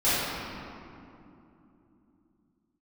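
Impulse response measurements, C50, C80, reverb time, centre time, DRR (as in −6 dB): −5.0 dB, −2.0 dB, 2.9 s, 174 ms, −15.0 dB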